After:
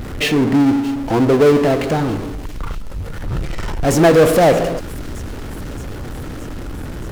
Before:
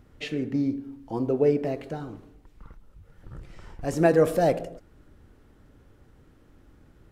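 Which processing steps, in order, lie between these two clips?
power-law curve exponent 0.5; thin delay 0.622 s, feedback 74%, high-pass 3700 Hz, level -15 dB; gain +5.5 dB

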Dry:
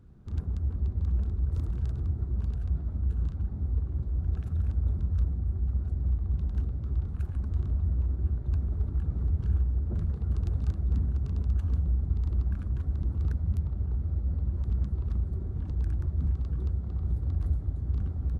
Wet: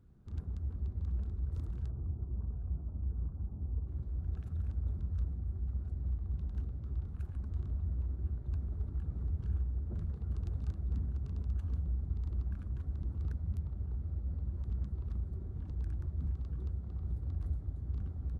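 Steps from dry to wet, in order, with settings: 1.88–3.88 LPF 1200 Hz 24 dB/oct; gain -8 dB

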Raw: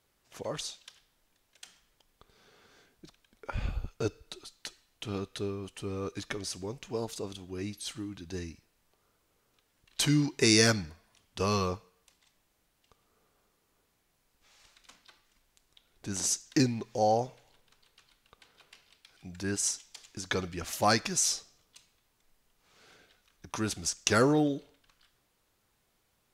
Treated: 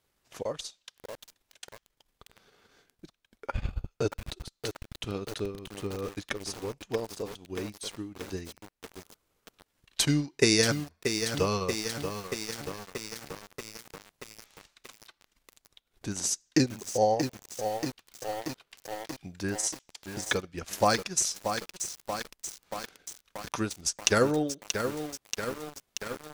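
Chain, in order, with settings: transient shaper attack +6 dB, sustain -12 dB; dynamic EQ 510 Hz, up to +4 dB, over -45 dBFS, Q 5.3; lo-fi delay 0.632 s, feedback 80%, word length 6-bit, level -6.5 dB; gain -2 dB

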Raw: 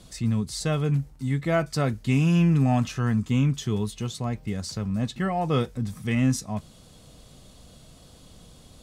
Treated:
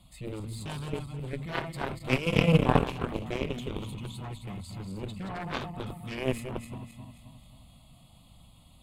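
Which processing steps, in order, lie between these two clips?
regenerating reverse delay 0.133 s, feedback 67%, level -5.5 dB; fixed phaser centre 1600 Hz, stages 6; added harmonics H 3 -8 dB, 5 -35 dB, 6 -34 dB, 7 -31 dB, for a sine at -10.5 dBFS; gain +5 dB

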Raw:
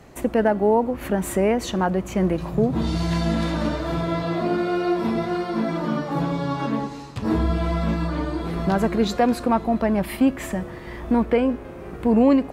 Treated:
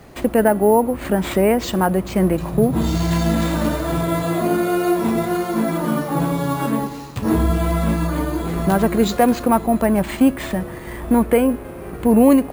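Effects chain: careless resampling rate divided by 4×, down none, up hold; gain +4 dB

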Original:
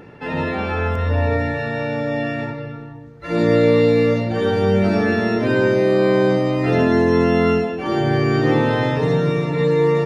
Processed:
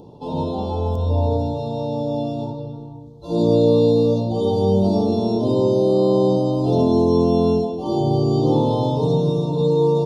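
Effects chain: elliptic band-stop 970–3500 Hz, stop band 50 dB

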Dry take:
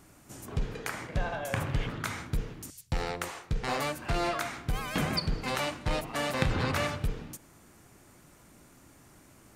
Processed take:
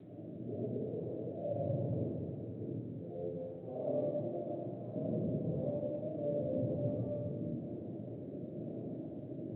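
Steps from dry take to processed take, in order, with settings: notches 50/100/150/200/250/300 Hz; tube stage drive 29 dB, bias 0.3; compressor 5:1, threshold -50 dBFS, peak gain reduction 17 dB; auto swell 0.196 s; rotary speaker horn 1 Hz; Chebyshev band-pass 100–620 Hz, order 4; 5.91–6.59 air absorption 79 m; reverb RT60 2.0 s, pre-delay 30 ms, DRR -8 dB; gain +11.5 dB; G.726 32 kbps 8000 Hz

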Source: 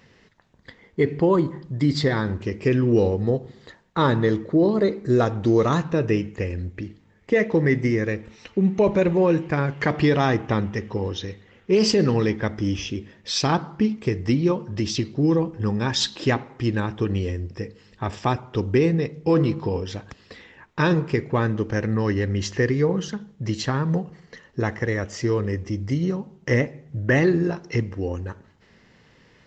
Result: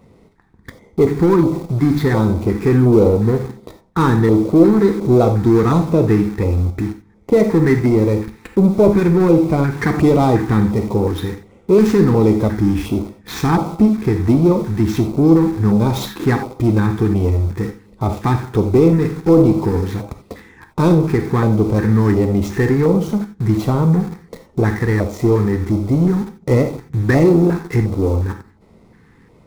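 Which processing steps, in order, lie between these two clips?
median filter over 9 samples; in parallel at -8.5 dB: companded quantiser 2-bit; on the sum: soft clip -13 dBFS, distortion -8 dB; bell 2900 Hz -11.5 dB 0.27 oct; non-linear reverb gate 0.11 s flat, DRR 6.5 dB; LFO notch square 1.4 Hz 590–1700 Hz; tilt shelf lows +3.5 dB, about 1400 Hz; gain +5 dB

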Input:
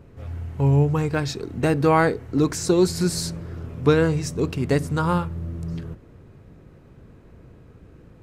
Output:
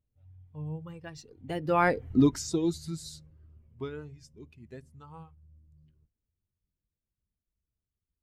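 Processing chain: per-bin expansion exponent 1.5; Doppler pass-by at 2.09, 29 m/s, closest 3.2 m; gain +4.5 dB

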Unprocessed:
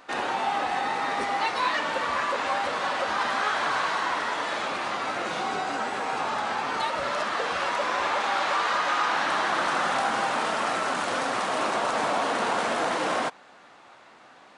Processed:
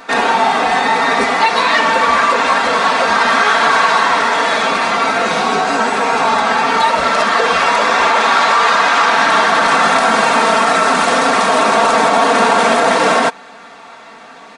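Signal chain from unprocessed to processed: notch 3000 Hz, Q 22; comb 4.4 ms; maximiser +14.5 dB; gain -1 dB

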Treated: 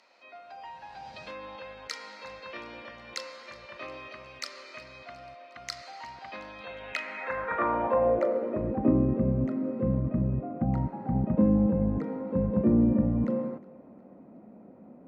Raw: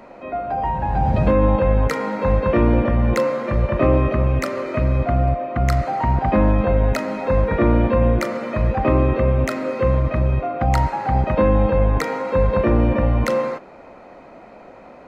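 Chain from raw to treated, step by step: thinning echo 0.362 s, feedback 52%, level -21.5 dB; band-pass sweep 4700 Hz -> 210 Hz, 6.53–9; gain +1.5 dB

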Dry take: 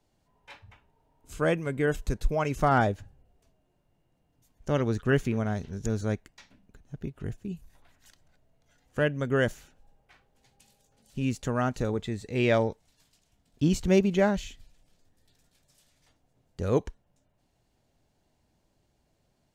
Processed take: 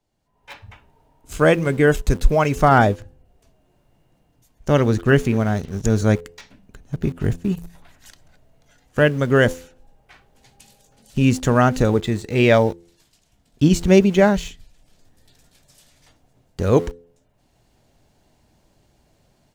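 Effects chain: de-hum 85.57 Hz, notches 6; AGC gain up to 15 dB; in parallel at -7 dB: sample gate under -27.5 dBFS; on the sum: gain -3.5 dB

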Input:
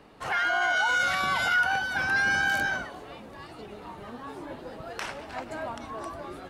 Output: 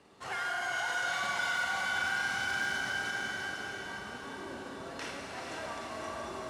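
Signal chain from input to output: CVSD 64 kbps; LPF 7800 Hz 12 dB/oct; resonator 390 Hz, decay 0.21 s, harmonics odd, mix 70%; compressor 3:1, threshold -36 dBFS, peak gain reduction 5 dB; on a send: diffused feedback echo 0.497 s, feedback 45%, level -4 dB; on the sum: wavefolder -28.5 dBFS; Schroeder reverb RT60 3.8 s, combs from 33 ms, DRR -1 dB; in parallel at +2 dB: limiter -28.5 dBFS, peak gain reduction 6.5 dB; on the sum: HPF 60 Hz; high shelf 3600 Hz +7 dB; gain -6 dB

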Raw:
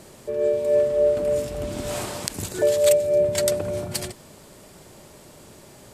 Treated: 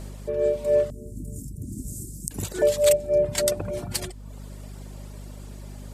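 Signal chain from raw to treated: hum 50 Hz, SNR 13 dB; reverb removal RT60 0.74 s; 0.9–2.31 inverse Chebyshev band-stop 870–2500 Hz, stop band 70 dB

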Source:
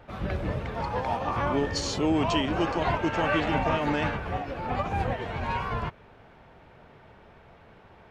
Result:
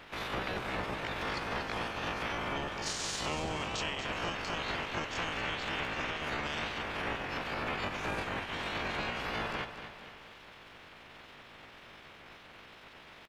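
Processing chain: spectral limiter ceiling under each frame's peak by 23 dB; compressor 12:1, threshold -32 dBFS, peak gain reduction 12.5 dB; tempo 0.61×; on a send: feedback echo 0.235 s, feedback 50%, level -10 dB

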